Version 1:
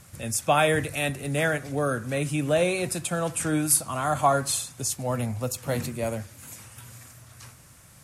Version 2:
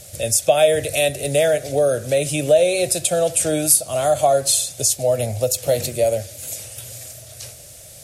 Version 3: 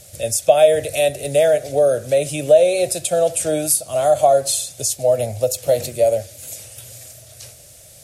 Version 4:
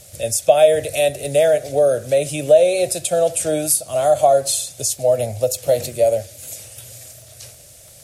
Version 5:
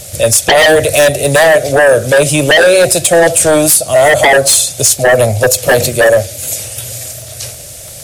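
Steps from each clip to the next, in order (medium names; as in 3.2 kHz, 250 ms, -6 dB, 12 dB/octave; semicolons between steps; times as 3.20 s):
FFT filter 100 Hz 0 dB, 240 Hz -8 dB, 620 Hz +12 dB, 1 kHz -13 dB, 3.6 kHz +7 dB; compression 2:1, threshold -23 dBFS, peak gain reduction 8.5 dB; trim +6.5 dB
dynamic bell 620 Hz, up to +6 dB, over -26 dBFS, Q 1.2; trim -3 dB
crackle 16 per s -35 dBFS
sine folder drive 13 dB, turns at -1 dBFS; trim -2 dB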